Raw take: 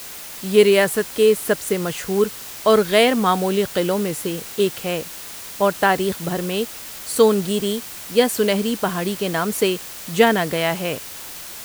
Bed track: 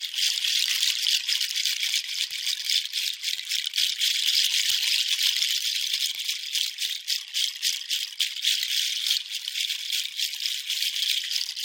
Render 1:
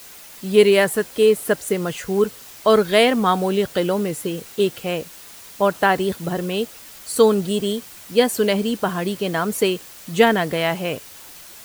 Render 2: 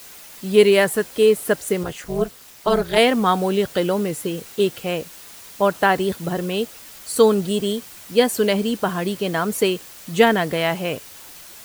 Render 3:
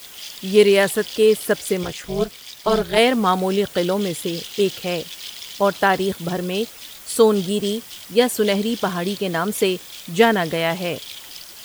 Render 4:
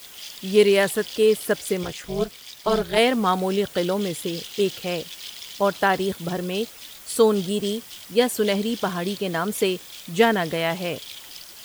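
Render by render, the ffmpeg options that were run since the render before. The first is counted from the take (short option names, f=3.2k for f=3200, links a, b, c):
-af "afftdn=nr=7:nf=-35"
-filter_complex "[0:a]asettb=1/sr,asplit=3[a][b][c];[a]atrim=end=1.834[d];[b]atrim=start=1.83:end=2.98,asetpts=PTS-STARTPTS,afade=t=in:d=0.004:c=qsin,afade=t=out:st=1.146:d=0.004:c=qsin,tremolo=f=240:d=0.889[e];[c]atrim=start=2.976[f];[d][e]acrossfade=d=0.004:c1=hsin:c2=qsin[g];[g][f]acrossfade=d=0.004:c1=qsin:c2=hsin"
-filter_complex "[1:a]volume=-12dB[a];[0:a][a]amix=inputs=2:normalize=0"
-af "volume=-3dB"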